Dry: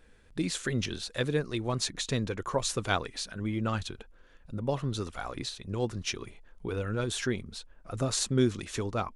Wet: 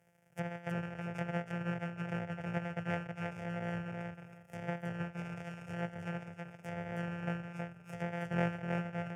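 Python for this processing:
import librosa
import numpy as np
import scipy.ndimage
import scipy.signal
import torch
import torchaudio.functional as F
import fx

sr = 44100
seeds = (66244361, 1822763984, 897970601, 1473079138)

y = np.r_[np.sort(x[:len(x) // 256 * 256].reshape(-1, 256), axis=1).ravel(), x[len(x) // 256 * 256:]]
y = scipy.signal.sosfilt(scipy.signal.butter(4, 120.0, 'highpass', fs=sr, output='sos'), y)
y = fx.env_lowpass_down(y, sr, base_hz=2400.0, full_db=-30.0)
y = fx.fixed_phaser(y, sr, hz=1100.0, stages=6)
y = fx.echo_feedback(y, sr, ms=320, feedback_pct=20, wet_db=-3.5)
y = y * 10.0 ** (-3.5 / 20.0)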